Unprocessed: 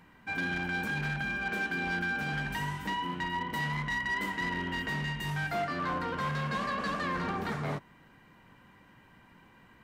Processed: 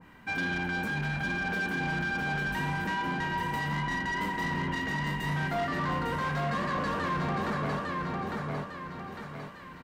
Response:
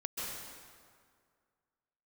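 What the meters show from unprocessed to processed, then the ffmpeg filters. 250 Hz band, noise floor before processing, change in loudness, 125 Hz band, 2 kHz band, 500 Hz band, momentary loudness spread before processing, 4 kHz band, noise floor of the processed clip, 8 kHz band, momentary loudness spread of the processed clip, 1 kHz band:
+3.5 dB, -59 dBFS, +1.5 dB, +3.5 dB, +1.5 dB, +3.5 dB, 3 LU, +0.5 dB, -46 dBFS, +1.5 dB, 6 LU, +3.0 dB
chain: -af "aecho=1:1:853|1706|2559|3412|4265:0.668|0.254|0.0965|0.0367|0.0139,asoftclip=type=tanh:threshold=0.0355,adynamicequalizer=threshold=0.00398:dfrequency=1600:dqfactor=0.7:tfrequency=1600:tqfactor=0.7:attack=5:release=100:ratio=0.375:range=2.5:mode=cutabove:tftype=highshelf,volume=1.68"

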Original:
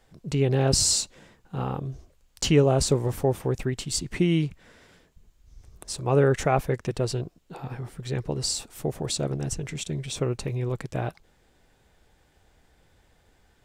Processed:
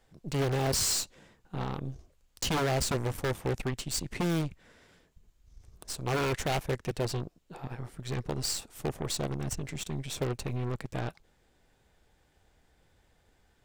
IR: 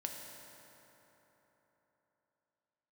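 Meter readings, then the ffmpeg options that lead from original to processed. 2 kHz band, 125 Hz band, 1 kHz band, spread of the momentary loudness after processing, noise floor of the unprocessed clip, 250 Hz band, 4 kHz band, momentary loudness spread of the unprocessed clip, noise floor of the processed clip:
-1.5 dB, -7.0 dB, -4.0 dB, 13 LU, -64 dBFS, -7.0 dB, -5.0 dB, 16 LU, -69 dBFS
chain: -af "aeval=exprs='0.126*(abs(mod(val(0)/0.126+3,4)-2)-1)':c=same,aeval=exprs='0.133*(cos(1*acos(clip(val(0)/0.133,-1,1)))-cos(1*PI/2))+0.0266*(cos(4*acos(clip(val(0)/0.133,-1,1)))-cos(4*PI/2))+0.0335*(cos(6*acos(clip(val(0)/0.133,-1,1)))-cos(6*PI/2))':c=same,volume=0.562"

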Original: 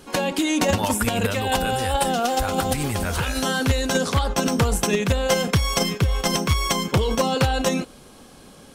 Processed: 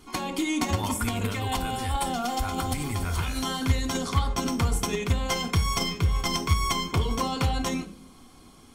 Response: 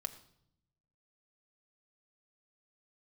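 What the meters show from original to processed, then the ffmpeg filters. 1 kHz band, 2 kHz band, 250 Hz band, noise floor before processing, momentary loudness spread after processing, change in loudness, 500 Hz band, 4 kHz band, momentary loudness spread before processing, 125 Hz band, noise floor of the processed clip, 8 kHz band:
-5.0 dB, -7.0 dB, -5.5 dB, -47 dBFS, 4 LU, -5.5 dB, -11.0 dB, -5.5 dB, 3 LU, -3.0 dB, -51 dBFS, -6.5 dB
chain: -filter_complex "[1:a]atrim=start_sample=2205,asetrate=74970,aresample=44100[s0];[0:a][s0]afir=irnorm=-1:irlink=0"

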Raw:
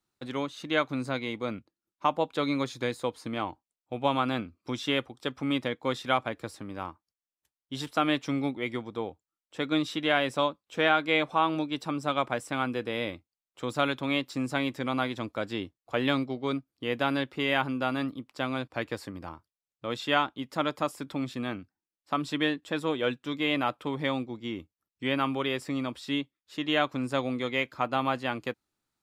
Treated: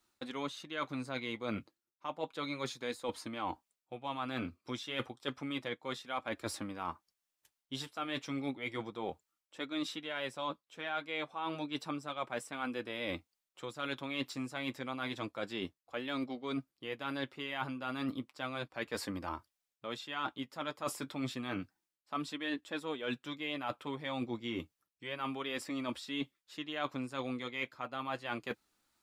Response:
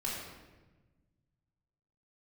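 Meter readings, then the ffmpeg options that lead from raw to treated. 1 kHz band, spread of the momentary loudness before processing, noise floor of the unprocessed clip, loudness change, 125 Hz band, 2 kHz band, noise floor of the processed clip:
-10.0 dB, 10 LU, under -85 dBFS, -9.5 dB, -9.5 dB, -9.0 dB, under -85 dBFS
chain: -af "lowshelf=f=490:g=-6,areverse,acompressor=threshold=0.00794:ratio=12,areverse,flanger=delay=3:depth=6:regen=-44:speed=0.31:shape=triangular,volume=3.76"

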